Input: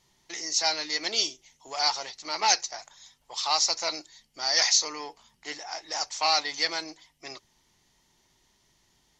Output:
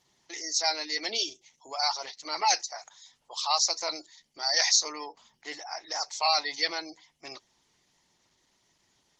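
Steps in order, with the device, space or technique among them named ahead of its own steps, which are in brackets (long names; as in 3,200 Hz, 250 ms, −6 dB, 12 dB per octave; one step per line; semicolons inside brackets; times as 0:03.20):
noise-suppressed video call (high-pass filter 140 Hz 6 dB per octave; gate on every frequency bin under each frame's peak −20 dB strong; Opus 16 kbit/s 48,000 Hz)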